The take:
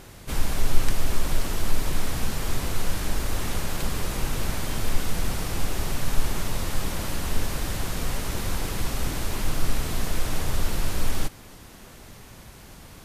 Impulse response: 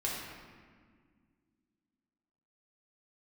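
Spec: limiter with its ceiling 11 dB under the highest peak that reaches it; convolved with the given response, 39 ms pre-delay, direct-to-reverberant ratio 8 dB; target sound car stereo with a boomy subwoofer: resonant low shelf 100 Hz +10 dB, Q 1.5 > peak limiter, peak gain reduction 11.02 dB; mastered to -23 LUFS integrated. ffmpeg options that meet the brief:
-filter_complex "[0:a]alimiter=limit=0.188:level=0:latency=1,asplit=2[s0][s1];[1:a]atrim=start_sample=2205,adelay=39[s2];[s1][s2]afir=irnorm=-1:irlink=0,volume=0.224[s3];[s0][s3]amix=inputs=2:normalize=0,lowshelf=f=100:t=q:w=1.5:g=10,volume=1.68,alimiter=limit=0.422:level=0:latency=1"

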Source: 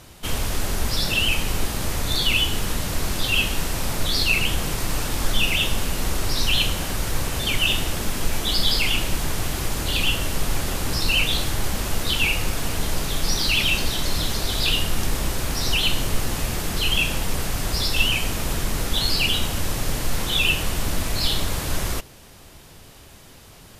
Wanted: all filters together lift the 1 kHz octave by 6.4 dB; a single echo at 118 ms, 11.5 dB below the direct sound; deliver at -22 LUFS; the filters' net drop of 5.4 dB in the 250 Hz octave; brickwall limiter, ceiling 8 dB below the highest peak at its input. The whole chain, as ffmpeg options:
-af "equalizer=f=250:t=o:g=-8.5,equalizer=f=1000:t=o:g=8.5,alimiter=limit=0.211:level=0:latency=1,aecho=1:1:118:0.266,volume=1.26"

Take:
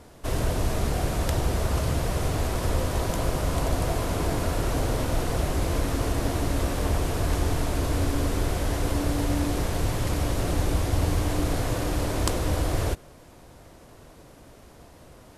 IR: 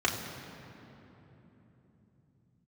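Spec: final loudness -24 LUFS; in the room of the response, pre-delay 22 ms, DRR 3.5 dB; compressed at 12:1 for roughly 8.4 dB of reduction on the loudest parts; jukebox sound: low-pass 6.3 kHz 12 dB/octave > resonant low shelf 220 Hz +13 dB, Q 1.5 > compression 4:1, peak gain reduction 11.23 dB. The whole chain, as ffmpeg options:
-filter_complex "[0:a]acompressor=threshold=0.0398:ratio=12,asplit=2[s0][s1];[1:a]atrim=start_sample=2205,adelay=22[s2];[s1][s2]afir=irnorm=-1:irlink=0,volume=0.188[s3];[s0][s3]amix=inputs=2:normalize=0,lowpass=6300,lowshelf=f=220:t=q:w=1.5:g=13,acompressor=threshold=0.0708:ratio=4,volume=1.58"

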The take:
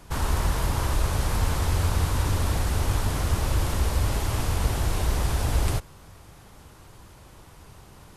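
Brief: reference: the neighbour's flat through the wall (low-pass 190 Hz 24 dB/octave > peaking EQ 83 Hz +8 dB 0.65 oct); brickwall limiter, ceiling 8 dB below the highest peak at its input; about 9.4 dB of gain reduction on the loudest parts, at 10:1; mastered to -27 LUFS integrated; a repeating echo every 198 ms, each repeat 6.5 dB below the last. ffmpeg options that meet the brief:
-af "acompressor=threshold=0.0398:ratio=10,alimiter=level_in=1.58:limit=0.0631:level=0:latency=1,volume=0.631,lowpass=f=190:w=0.5412,lowpass=f=190:w=1.3066,equalizer=f=83:t=o:w=0.65:g=8,aecho=1:1:198|396|594|792|990|1188:0.473|0.222|0.105|0.0491|0.0231|0.0109,volume=2.24"

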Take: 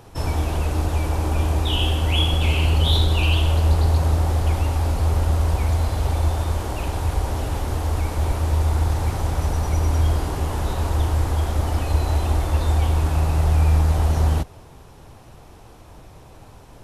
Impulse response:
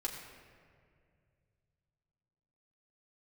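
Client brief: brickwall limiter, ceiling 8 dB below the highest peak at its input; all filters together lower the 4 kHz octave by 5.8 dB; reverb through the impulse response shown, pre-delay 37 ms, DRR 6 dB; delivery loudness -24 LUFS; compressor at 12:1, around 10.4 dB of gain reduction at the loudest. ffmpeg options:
-filter_complex "[0:a]equalizer=f=4000:t=o:g=-8,acompressor=threshold=0.0631:ratio=12,alimiter=level_in=1.12:limit=0.0631:level=0:latency=1,volume=0.891,asplit=2[s0][s1];[1:a]atrim=start_sample=2205,adelay=37[s2];[s1][s2]afir=irnorm=-1:irlink=0,volume=0.422[s3];[s0][s3]amix=inputs=2:normalize=0,volume=2.51"

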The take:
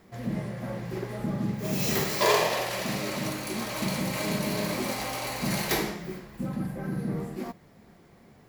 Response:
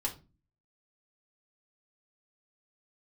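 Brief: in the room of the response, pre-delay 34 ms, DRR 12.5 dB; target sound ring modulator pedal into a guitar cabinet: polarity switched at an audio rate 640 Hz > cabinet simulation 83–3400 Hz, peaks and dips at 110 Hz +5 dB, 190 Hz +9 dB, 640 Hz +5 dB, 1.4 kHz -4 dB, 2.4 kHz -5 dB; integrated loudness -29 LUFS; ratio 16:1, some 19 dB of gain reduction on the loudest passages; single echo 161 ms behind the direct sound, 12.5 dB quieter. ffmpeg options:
-filter_complex "[0:a]acompressor=threshold=0.0141:ratio=16,aecho=1:1:161:0.237,asplit=2[s0][s1];[1:a]atrim=start_sample=2205,adelay=34[s2];[s1][s2]afir=irnorm=-1:irlink=0,volume=0.168[s3];[s0][s3]amix=inputs=2:normalize=0,aeval=exprs='val(0)*sgn(sin(2*PI*640*n/s))':c=same,highpass=83,equalizer=f=110:t=q:w=4:g=5,equalizer=f=190:t=q:w=4:g=9,equalizer=f=640:t=q:w=4:g=5,equalizer=f=1400:t=q:w=4:g=-4,equalizer=f=2400:t=q:w=4:g=-5,lowpass=f=3400:w=0.5412,lowpass=f=3400:w=1.3066,volume=3.98"

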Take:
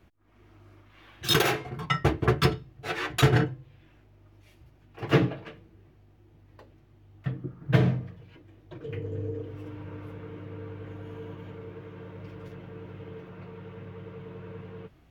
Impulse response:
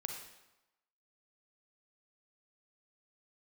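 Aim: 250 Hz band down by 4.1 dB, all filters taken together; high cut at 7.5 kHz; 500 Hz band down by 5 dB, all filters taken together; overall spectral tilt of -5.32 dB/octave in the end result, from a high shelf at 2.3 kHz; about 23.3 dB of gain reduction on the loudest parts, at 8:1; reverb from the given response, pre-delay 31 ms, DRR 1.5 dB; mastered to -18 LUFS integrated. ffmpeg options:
-filter_complex "[0:a]lowpass=7500,equalizer=f=250:t=o:g=-6,equalizer=f=500:t=o:g=-4,highshelf=f=2300:g=-4.5,acompressor=threshold=0.00708:ratio=8,asplit=2[s0][s1];[1:a]atrim=start_sample=2205,adelay=31[s2];[s1][s2]afir=irnorm=-1:irlink=0,volume=0.891[s3];[s0][s3]amix=inputs=2:normalize=0,volume=23.7"

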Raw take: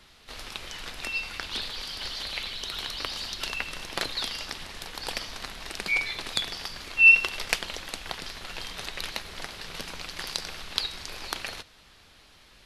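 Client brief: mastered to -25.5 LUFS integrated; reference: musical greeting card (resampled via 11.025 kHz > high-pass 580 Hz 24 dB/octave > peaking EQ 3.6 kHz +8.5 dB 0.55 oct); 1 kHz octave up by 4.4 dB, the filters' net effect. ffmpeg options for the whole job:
-af "equalizer=f=1000:t=o:g=5.5,aresample=11025,aresample=44100,highpass=f=580:w=0.5412,highpass=f=580:w=1.3066,equalizer=f=3600:t=o:w=0.55:g=8.5,volume=0.841"

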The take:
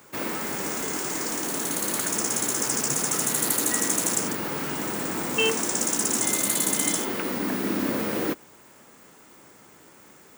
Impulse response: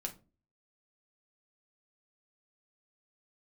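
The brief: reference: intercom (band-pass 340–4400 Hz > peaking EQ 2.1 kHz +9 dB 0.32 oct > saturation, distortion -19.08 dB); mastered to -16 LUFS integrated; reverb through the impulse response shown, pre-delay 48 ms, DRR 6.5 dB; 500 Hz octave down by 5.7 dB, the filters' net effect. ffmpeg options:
-filter_complex "[0:a]equalizer=f=500:t=o:g=-5.5,asplit=2[s0][s1];[1:a]atrim=start_sample=2205,adelay=48[s2];[s1][s2]afir=irnorm=-1:irlink=0,volume=0.531[s3];[s0][s3]amix=inputs=2:normalize=0,highpass=340,lowpass=4400,equalizer=f=2100:t=o:w=0.32:g=9,asoftclip=threshold=0.106,volume=4.73"

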